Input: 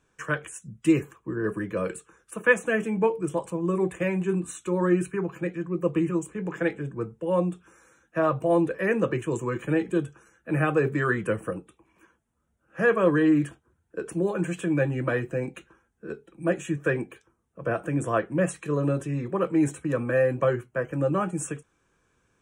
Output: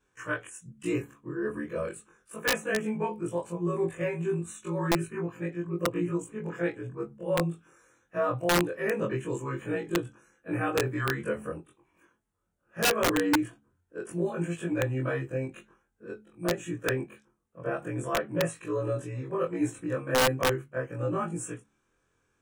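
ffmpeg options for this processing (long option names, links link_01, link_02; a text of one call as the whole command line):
ffmpeg -i in.wav -af "afftfilt=real='re':imag='-im':win_size=2048:overlap=0.75,bandreject=frequency=70.94:width_type=h:width=4,bandreject=frequency=141.88:width_type=h:width=4,bandreject=frequency=212.82:width_type=h:width=4,bandreject=frequency=283.76:width_type=h:width=4,aeval=exprs='(mod(7.5*val(0)+1,2)-1)/7.5':channel_layout=same" out.wav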